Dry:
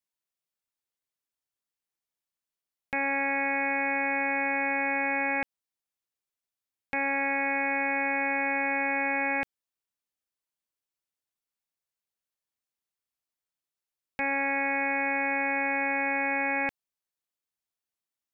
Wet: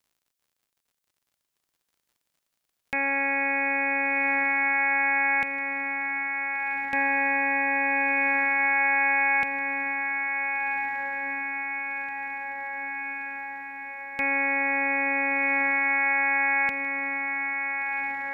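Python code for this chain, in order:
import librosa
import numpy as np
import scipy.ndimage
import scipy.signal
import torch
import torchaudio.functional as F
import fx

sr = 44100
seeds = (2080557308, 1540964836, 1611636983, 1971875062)

y = fx.high_shelf(x, sr, hz=2600.0, db=8.5)
y = fx.dmg_crackle(y, sr, seeds[0], per_s=73.0, level_db=-57.0)
y = fx.echo_diffused(y, sr, ms=1528, feedback_pct=68, wet_db=-6.0)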